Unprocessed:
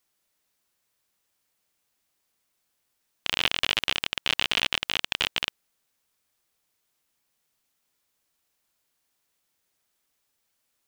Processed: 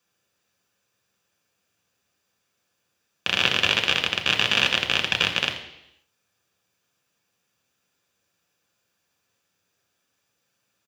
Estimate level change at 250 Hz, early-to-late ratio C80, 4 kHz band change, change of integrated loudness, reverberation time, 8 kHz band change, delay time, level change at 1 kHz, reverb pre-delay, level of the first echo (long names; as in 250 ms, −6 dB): +7.5 dB, 10.0 dB, +4.0 dB, +5.0 dB, 0.80 s, +3.0 dB, 82 ms, +5.0 dB, 3 ms, −14.0 dB